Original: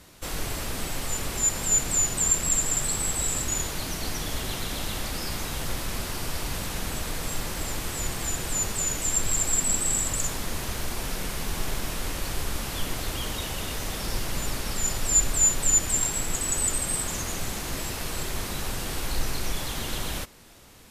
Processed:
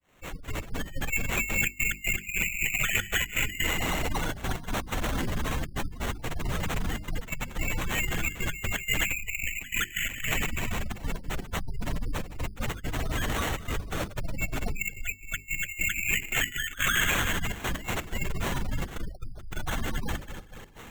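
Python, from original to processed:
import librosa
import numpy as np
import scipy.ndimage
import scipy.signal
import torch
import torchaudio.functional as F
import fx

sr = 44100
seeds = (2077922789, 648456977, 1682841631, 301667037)

p1 = fx.fade_in_head(x, sr, length_s=0.7)
p2 = p1 + fx.echo_heads(p1, sr, ms=64, heads='second and third', feedback_pct=68, wet_db=-13.5, dry=0)
p3 = fx.over_compress(p2, sr, threshold_db=-28.0, ratio=-0.5)
p4 = fx.bass_treble(p3, sr, bass_db=6, treble_db=5)
p5 = fx.step_gate(p4, sr, bpm=125, pattern='xxx.x.x.xxx', floor_db=-12.0, edge_ms=4.5)
p6 = fx.low_shelf(p5, sr, hz=170.0, db=-5.5)
p7 = fx.hum_notches(p6, sr, base_hz=50, count=8)
p8 = fx.spec_gate(p7, sr, threshold_db=-20, keep='strong')
y = fx.sample_hold(p8, sr, seeds[0], rate_hz=4900.0, jitter_pct=0)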